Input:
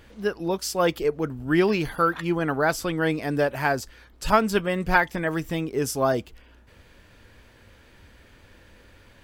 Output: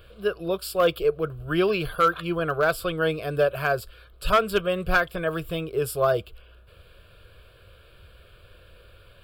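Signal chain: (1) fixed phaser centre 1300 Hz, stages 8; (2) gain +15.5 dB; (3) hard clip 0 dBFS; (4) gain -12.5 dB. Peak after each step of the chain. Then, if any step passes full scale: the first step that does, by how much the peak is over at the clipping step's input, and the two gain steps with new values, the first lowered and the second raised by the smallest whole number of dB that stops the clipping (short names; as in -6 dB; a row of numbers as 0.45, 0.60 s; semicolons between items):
-9.0, +6.5, 0.0, -12.5 dBFS; step 2, 6.5 dB; step 2 +8.5 dB, step 4 -5.5 dB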